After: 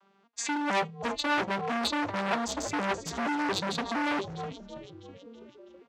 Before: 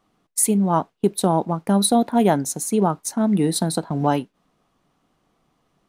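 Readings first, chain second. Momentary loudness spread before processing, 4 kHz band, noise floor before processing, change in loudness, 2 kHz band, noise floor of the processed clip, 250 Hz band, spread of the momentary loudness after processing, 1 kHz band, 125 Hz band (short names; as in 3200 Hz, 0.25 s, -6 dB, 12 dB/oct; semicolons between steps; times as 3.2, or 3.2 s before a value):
6 LU, -2.5 dB, -69 dBFS, -10.0 dB, +7.0 dB, -66 dBFS, -13.0 dB, 17 LU, -6.5 dB, -17.5 dB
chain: arpeggiated vocoder minor triad, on G3, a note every 0.232 s; in parallel at +2 dB: negative-ratio compressor -23 dBFS, ratio -0.5; on the sum: dynamic EQ 1500 Hz, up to -5 dB, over -38 dBFS, Q 1.4; on a send: frequency-shifting echo 0.326 s, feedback 58%, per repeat -130 Hz, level -12.5 dB; on the sum: overloaded stage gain 23 dB; band-pass 2400 Hz, Q 0.53; gain +5 dB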